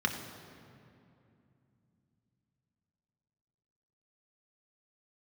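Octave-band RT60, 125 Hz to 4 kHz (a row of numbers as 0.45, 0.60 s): 4.4, 4.1, 2.8, 2.5, 2.2, 1.7 s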